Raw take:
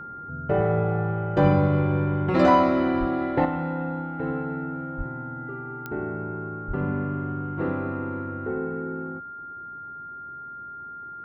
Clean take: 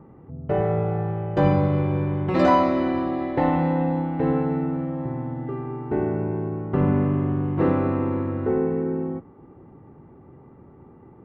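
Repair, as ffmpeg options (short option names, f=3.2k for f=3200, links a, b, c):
-filter_complex "[0:a]adeclick=t=4,bandreject=f=1.4k:w=30,asplit=3[a][b][c];[a]afade=t=out:st=2.99:d=0.02[d];[b]highpass=f=140:w=0.5412,highpass=f=140:w=1.3066,afade=t=in:st=2.99:d=0.02,afade=t=out:st=3.11:d=0.02[e];[c]afade=t=in:st=3.11:d=0.02[f];[d][e][f]amix=inputs=3:normalize=0,asplit=3[g][h][i];[g]afade=t=out:st=4.97:d=0.02[j];[h]highpass=f=140:w=0.5412,highpass=f=140:w=1.3066,afade=t=in:st=4.97:d=0.02,afade=t=out:st=5.09:d=0.02[k];[i]afade=t=in:st=5.09:d=0.02[l];[j][k][l]amix=inputs=3:normalize=0,asplit=3[m][n][o];[m]afade=t=out:st=6.67:d=0.02[p];[n]highpass=f=140:w=0.5412,highpass=f=140:w=1.3066,afade=t=in:st=6.67:d=0.02,afade=t=out:st=6.79:d=0.02[q];[o]afade=t=in:st=6.79:d=0.02[r];[p][q][r]amix=inputs=3:normalize=0,asetnsamples=n=441:p=0,asendcmd='3.45 volume volume 7dB',volume=0dB"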